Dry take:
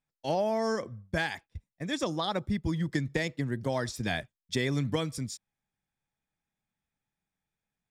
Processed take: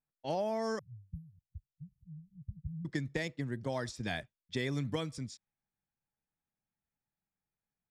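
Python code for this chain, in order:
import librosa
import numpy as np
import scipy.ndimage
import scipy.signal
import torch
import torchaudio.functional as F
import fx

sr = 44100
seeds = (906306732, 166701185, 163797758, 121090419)

y = fx.brickwall_bandstop(x, sr, low_hz=170.0, high_hz=11000.0, at=(0.79, 2.85))
y = fx.env_lowpass(y, sr, base_hz=1900.0, full_db=-26.5)
y = F.gain(torch.from_numpy(y), -5.5).numpy()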